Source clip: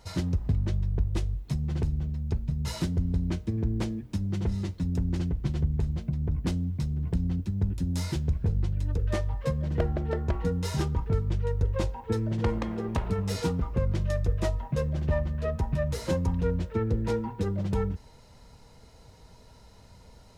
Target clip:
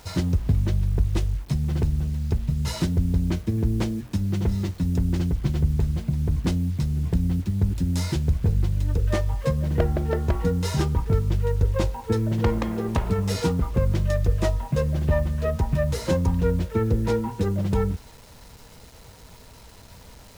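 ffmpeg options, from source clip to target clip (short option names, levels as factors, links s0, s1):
-af "acrusher=bits=8:mix=0:aa=0.000001,volume=1.78"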